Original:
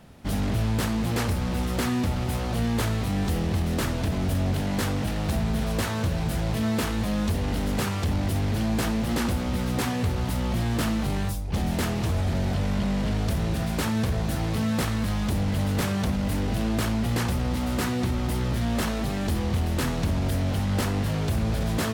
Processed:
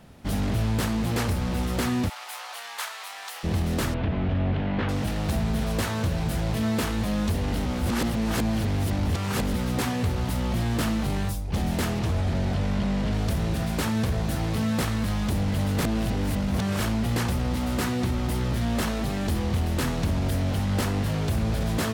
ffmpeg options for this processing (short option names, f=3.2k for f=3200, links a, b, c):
-filter_complex "[0:a]asplit=3[a][b][c];[a]afade=t=out:st=2.08:d=0.02[d];[b]highpass=f=850:w=0.5412,highpass=f=850:w=1.3066,afade=t=in:st=2.08:d=0.02,afade=t=out:st=3.43:d=0.02[e];[c]afade=t=in:st=3.43:d=0.02[f];[d][e][f]amix=inputs=3:normalize=0,asettb=1/sr,asplit=3[g][h][i];[g]atrim=end=3.944[j];[h]atrim=start=3.94:end=4.89,asetpts=PTS-STARTPTS,afade=t=in:d=0.004:c=qsin,afade=t=out:st=0.946:d=0.004:c=qsin,lowpass=f=3.1k:w=0.5412,lowpass=f=3.1k:w=1.3066[k];[i]atrim=start=4.886[l];[j][k]acrossfade=d=0.004:c1=hsin:c2=qsin[m];[m][l]acrossfade=d=0.004:c1=qsin:c2=hsin,asettb=1/sr,asplit=3[n][o][p];[n]atrim=end=11.994[q];[o]atrim=start=11.99:end=13.13,asetpts=PTS-STARTPTS,afade=t=in:d=0.004:c=qsin,afade=t=out:st=1.136:d=0.004:c=qsin,highshelf=f=9.6k:g=-9[r];[p]atrim=start=13.126[s];[q][r]acrossfade=d=0.004:c1=hsin:c2=qsin[t];[t][s]acrossfade=d=0.004:c1=qsin:c2=hsin,asplit=5[u][v][w][x][y];[u]atrim=end=7.652[z];[v]atrim=start=7.648:end=9.542,asetpts=PTS-STARTPTS,areverse[aa];[w]atrim=start=9.538:end=15.842[ab];[x]atrim=start=15.838:end=16.802,asetpts=PTS-STARTPTS,areverse[ac];[y]atrim=start=16.798[ad];[z][aa]acrossfade=d=0.004:c1=hsin:c2=hsin[ae];[ae][ab]acrossfade=d=0.004:c1=hsin:c2=hsin[af];[af][ac]acrossfade=d=0.004:c1=hsin:c2=hsin[ag];[ag][ad]acrossfade=d=0.004:c1=hsin:c2=hsin"